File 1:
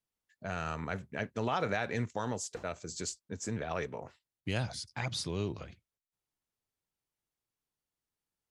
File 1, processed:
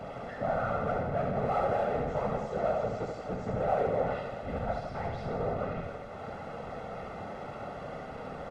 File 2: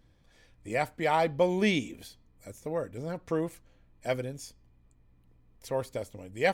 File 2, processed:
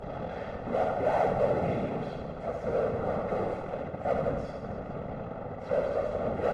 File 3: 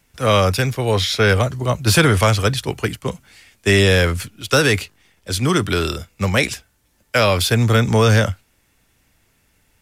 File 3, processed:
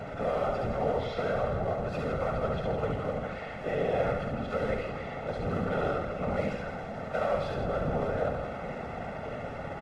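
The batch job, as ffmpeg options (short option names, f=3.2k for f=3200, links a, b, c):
-filter_complex "[0:a]aeval=exprs='val(0)+0.5*0.106*sgn(val(0))':c=same,lowpass=1.1k,aeval=exprs='clip(val(0),-1,0.0562)':c=same,alimiter=limit=-15dB:level=0:latency=1:release=19,highpass=280,tiltshelf=f=720:g=4.5,afftfilt=real='hypot(re,im)*cos(2*PI*random(0))':imag='hypot(re,im)*sin(2*PI*random(1))':win_size=512:overlap=0.75,aecho=1:1:1.5:0.71,asplit=2[a][b];[b]aecho=0:1:70|161|279.3|433.1|633:0.631|0.398|0.251|0.158|0.1[c];[a][c]amix=inputs=2:normalize=0" -ar 32000 -c:a libvorbis -b:a 32k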